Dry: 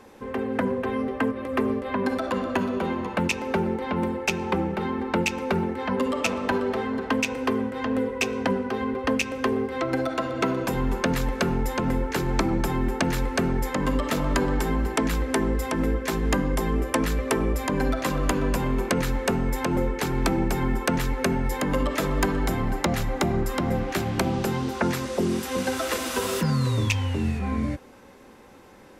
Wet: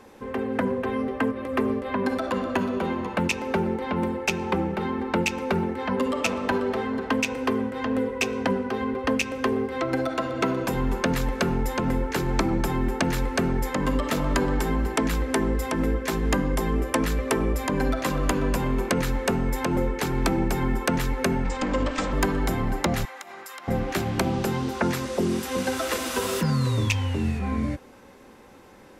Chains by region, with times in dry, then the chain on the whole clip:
21.44–22.13 minimum comb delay 3.8 ms + steep low-pass 8500 Hz 96 dB/oct
23.05–23.68 HPF 1100 Hz + compressor 5:1, threshold -36 dBFS
whole clip: dry

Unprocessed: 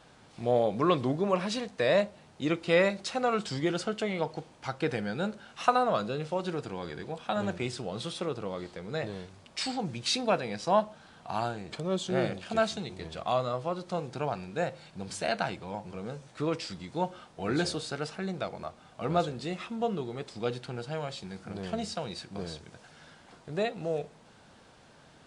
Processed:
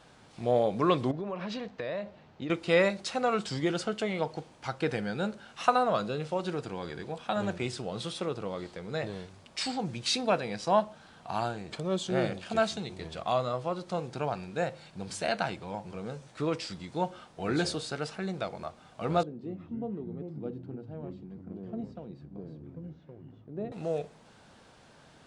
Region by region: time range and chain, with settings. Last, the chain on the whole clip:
1.11–2.5 air absorption 170 m + compressor 5:1, threshold -32 dBFS
19.23–23.72 band-pass 260 Hz, Q 1.7 + echoes that change speed 0.2 s, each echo -5 st, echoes 2, each echo -6 dB
whole clip: dry

